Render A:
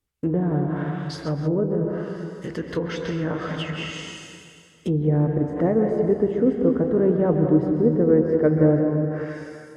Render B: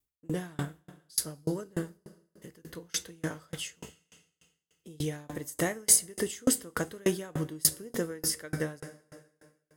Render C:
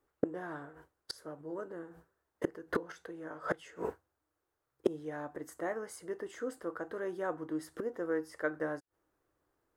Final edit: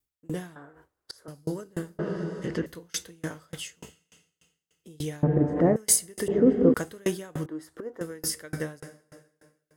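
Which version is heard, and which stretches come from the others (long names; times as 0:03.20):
B
0:00.56–0:01.28: punch in from C
0:01.99–0:02.66: punch in from A
0:05.23–0:05.76: punch in from A
0:06.28–0:06.74: punch in from A
0:07.46–0:08.01: punch in from C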